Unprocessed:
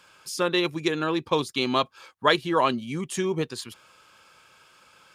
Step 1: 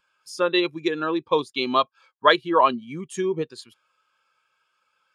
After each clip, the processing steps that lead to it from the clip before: bass shelf 390 Hz -7 dB; spectral contrast expander 1.5:1; trim +4 dB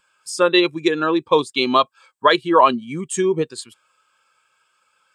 peaking EQ 8 kHz +14.5 dB 0.25 oct; loudness maximiser +7 dB; trim -1 dB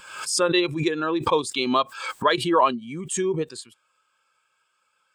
swell ahead of each attack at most 71 dB/s; trim -6 dB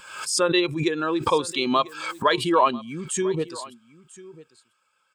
delay 994 ms -19.5 dB

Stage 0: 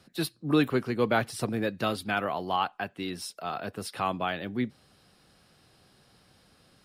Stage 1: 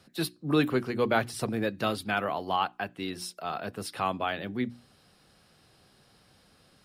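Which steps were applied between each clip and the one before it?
hum notches 60/120/180/240/300/360 Hz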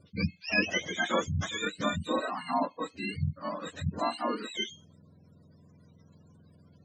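spectrum inverted on a logarithmic axis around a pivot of 880 Hz; spectral gate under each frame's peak -25 dB strong

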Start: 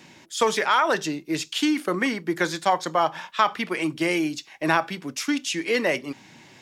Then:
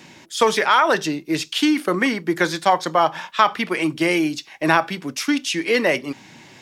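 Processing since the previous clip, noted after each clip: dynamic bell 7.1 kHz, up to -5 dB, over -51 dBFS, Q 4.3; trim +4.5 dB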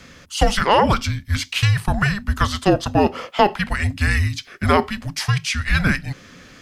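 frequency shift -410 Hz; trim +1 dB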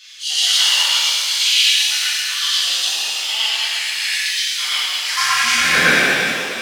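high-pass sweep 3.5 kHz -> 460 Hz, 4.96–5.55 s; reverse echo 115 ms -3.5 dB; pitch-shifted reverb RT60 2.3 s, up +7 st, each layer -8 dB, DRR -10 dB; trim -3 dB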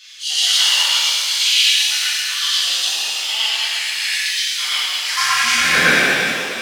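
no audible change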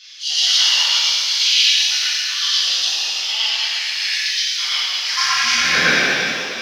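resonant high shelf 6.8 kHz -7.5 dB, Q 3; trim -2.5 dB

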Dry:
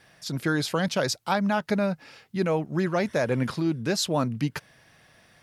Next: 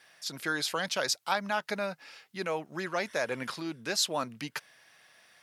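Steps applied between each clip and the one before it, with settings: high-pass 1.1 kHz 6 dB/octave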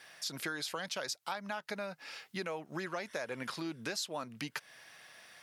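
compression 6:1, threshold -40 dBFS, peak gain reduction 15.5 dB; trim +4 dB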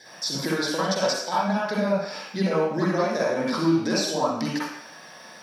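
reverberation RT60 0.70 s, pre-delay 43 ms, DRR -8.5 dB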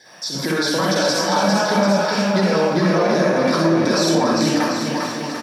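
level rider; peak limiter -11 dBFS, peak gain reduction 8.5 dB; bouncing-ball echo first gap 400 ms, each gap 0.85×, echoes 5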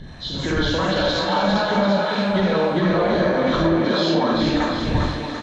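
knee-point frequency compression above 2.2 kHz 1.5:1; wind noise 140 Hz -29 dBFS; Chebyshev shaper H 2 -27 dB, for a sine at -4.5 dBFS; trim -2 dB

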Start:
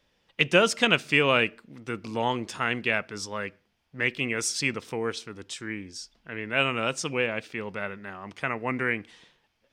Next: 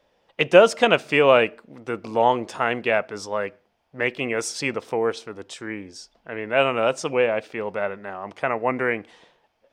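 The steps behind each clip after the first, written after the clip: peaking EQ 650 Hz +13.5 dB 1.8 oct; trim -2 dB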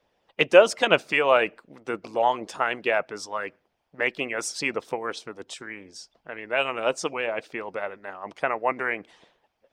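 harmonic-percussive split harmonic -14 dB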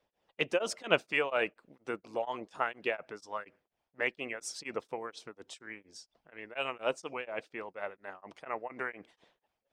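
tremolo of two beating tones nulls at 4.2 Hz; trim -6.5 dB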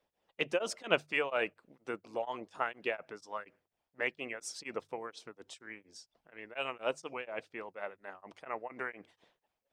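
hum notches 50/100/150 Hz; trim -2 dB

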